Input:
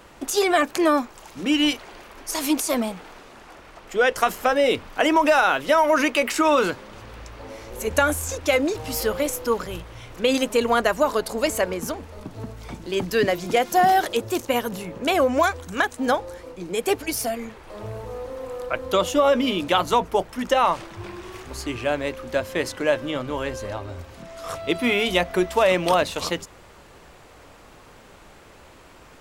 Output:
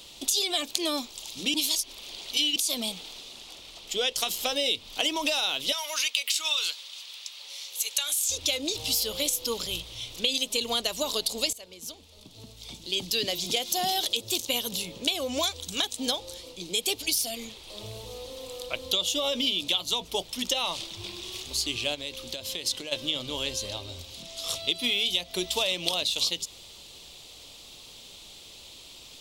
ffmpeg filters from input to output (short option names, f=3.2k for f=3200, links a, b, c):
-filter_complex "[0:a]asettb=1/sr,asplit=3[a][b][c];[a]atrim=end=5.724[d];[b]atrim=start=5.72:end=8.3,asetpts=PTS-STARTPTS,afade=t=in:d=0.004:c=qsin,afade=t=out:st=2.576:d=0.004:c=qsin,highpass=1.3k[e];[c]atrim=start=8.296[f];[d][e]acrossfade=d=0.004:c1=hsin:c2=qsin[g];[g][f]acrossfade=d=0.004:c1=qsin:c2=hsin,asplit=3[h][i][j];[h]afade=t=out:st=21.94:d=0.02[k];[i]acompressor=threshold=-28dB:ratio=16:attack=3.2:release=140:knee=1:detection=peak,afade=t=in:st=21.94:d=0.02,afade=t=out:st=22.91:d=0.02[l];[j]afade=t=in:st=22.91:d=0.02[m];[k][l][m]amix=inputs=3:normalize=0,asplit=4[n][o][p][q];[n]atrim=end=1.542[r];[o]atrim=start=1.538:end=2.562,asetpts=PTS-STARTPTS,areverse[s];[p]atrim=start=2.558:end=11.53,asetpts=PTS-STARTPTS,afade=t=out:st=8.968:d=0.004:c=hsin:silence=0.0944061[t];[q]atrim=start=11.53,asetpts=PTS-STARTPTS,afade=t=in:d=2.15:silence=0.0944061[u];[r][s]acrossfade=d=0.004:c1=hsin:c2=hsin[v];[t][u]concat=n=2:v=0:a=1[w];[v][w]acrossfade=d=0.004:c1=hsin:c2=hsin,highshelf=f=2.4k:t=q:w=3:g=14,acompressor=threshold=-16dB:ratio=6,volume=-7.5dB"